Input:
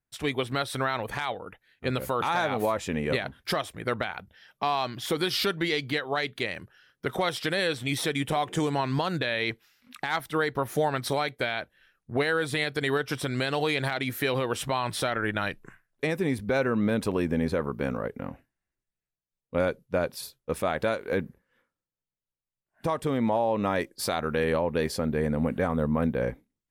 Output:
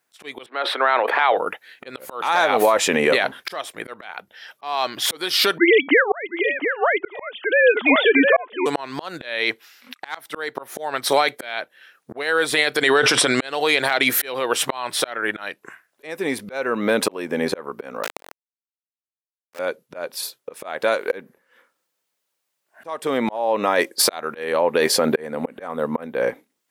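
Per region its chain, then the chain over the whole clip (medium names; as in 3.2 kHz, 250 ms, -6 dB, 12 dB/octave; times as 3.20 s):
0.46–1.37 s: Bessel high-pass 440 Hz, order 8 + distance through air 440 m + decay stretcher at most 56 dB/s
5.58–8.66 s: formants replaced by sine waves + delay 710 ms -7.5 dB
12.81–13.47 s: low-pass 9.9 kHz 24 dB/octave + decay stretcher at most 21 dB/s
18.03–19.59 s: bass shelf 240 Hz -11 dB + compression 3:1, threshold -43 dBFS + companded quantiser 2-bit
whole clip: high-pass 420 Hz 12 dB/octave; slow attack 755 ms; loudness maximiser +23.5 dB; trim -5 dB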